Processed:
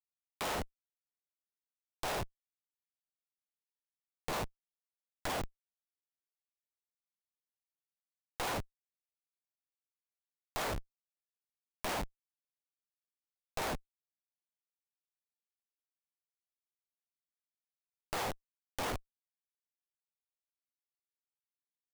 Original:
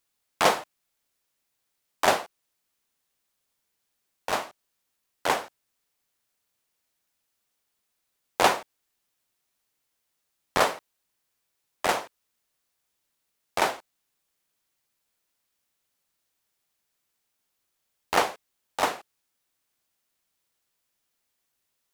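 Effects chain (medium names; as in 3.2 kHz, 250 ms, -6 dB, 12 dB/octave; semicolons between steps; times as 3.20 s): Schmitt trigger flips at -33 dBFS; crackling interface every 0.92 s, samples 64, repeat, from 0.79 s; tape noise reduction on one side only encoder only; trim -1.5 dB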